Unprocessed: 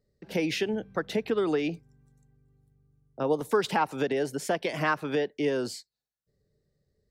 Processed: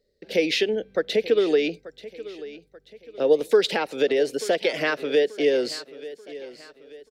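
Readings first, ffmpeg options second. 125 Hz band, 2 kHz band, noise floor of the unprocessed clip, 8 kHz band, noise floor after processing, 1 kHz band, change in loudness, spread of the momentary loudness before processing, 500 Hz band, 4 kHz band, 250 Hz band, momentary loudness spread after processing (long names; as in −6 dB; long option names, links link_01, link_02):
−6.5 dB, +4.5 dB, below −85 dBFS, +3.0 dB, −64 dBFS, −3.0 dB, +6.0 dB, 7 LU, +8.0 dB, +9.0 dB, +1.5 dB, 18 LU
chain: -filter_complex "[0:a]equalizer=frequency=125:width_type=o:width=1:gain=-11,equalizer=frequency=500:width_type=o:width=1:gain=12,equalizer=frequency=1000:width_type=o:width=1:gain=-11,equalizer=frequency=2000:width_type=o:width=1:gain=6,equalizer=frequency=4000:width_type=o:width=1:gain=10,asplit=2[link_01][link_02];[link_02]aecho=0:1:885|1770|2655|3540:0.141|0.0607|0.0261|0.0112[link_03];[link_01][link_03]amix=inputs=2:normalize=0"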